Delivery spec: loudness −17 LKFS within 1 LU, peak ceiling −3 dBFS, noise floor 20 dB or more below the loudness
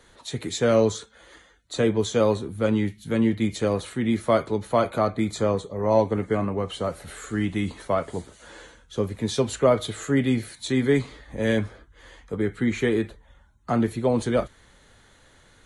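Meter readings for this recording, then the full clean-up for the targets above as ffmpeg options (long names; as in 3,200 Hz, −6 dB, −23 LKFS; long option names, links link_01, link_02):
integrated loudness −25.0 LKFS; sample peak −7.0 dBFS; target loudness −17.0 LKFS
→ -af "volume=8dB,alimiter=limit=-3dB:level=0:latency=1"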